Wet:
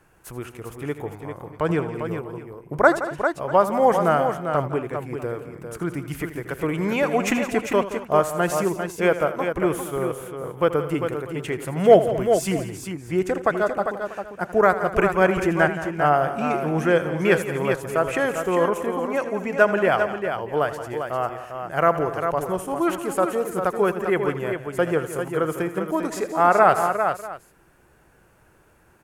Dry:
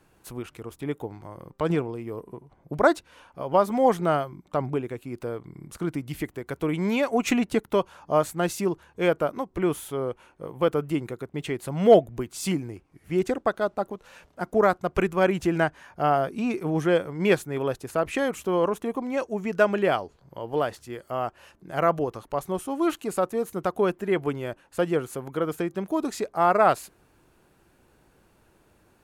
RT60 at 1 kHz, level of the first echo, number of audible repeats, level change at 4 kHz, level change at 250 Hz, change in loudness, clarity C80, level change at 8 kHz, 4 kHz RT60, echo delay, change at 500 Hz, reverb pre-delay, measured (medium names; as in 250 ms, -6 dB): no reverb, -14.0 dB, 5, +1.0 dB, +1.5 dB, +3.5 dB, no reverb, +3.5 dB, no reverb, 81 ms, +3.5 dB, no reverb